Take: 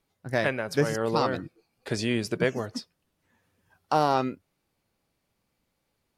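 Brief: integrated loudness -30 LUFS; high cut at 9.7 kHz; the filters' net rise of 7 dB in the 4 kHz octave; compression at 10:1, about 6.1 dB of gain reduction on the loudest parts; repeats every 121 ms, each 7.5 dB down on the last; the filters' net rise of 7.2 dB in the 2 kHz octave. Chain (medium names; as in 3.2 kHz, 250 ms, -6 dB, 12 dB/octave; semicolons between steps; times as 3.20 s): low-pass 9.7 kHz; peaking EQ 2 kHz +7.5 dB; peaking EQ 4 kHz +7 dB; compression 10:1, threshold -22 dBFS; feedback delay 121 ms, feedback 42%, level -7.5 dB; trim -1 dB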